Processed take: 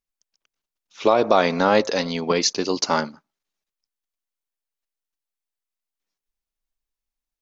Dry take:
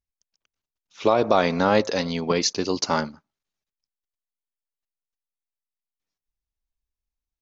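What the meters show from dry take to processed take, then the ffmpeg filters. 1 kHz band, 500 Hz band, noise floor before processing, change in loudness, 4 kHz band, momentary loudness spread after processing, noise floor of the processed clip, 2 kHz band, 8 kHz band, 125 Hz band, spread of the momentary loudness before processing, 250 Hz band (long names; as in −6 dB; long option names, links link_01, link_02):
+2.5 dB, +2.0 dB, below −85 dBFS, +2.0 dB, +2.5 dB, 7 LU, below −85 dBFS, +2.5 dB, can't be measured, −2.0 dB, 7 LU, +0.5 dB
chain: -af "equalizer=frequency=69:width=0.88:gain=-14,volume=2.5dB"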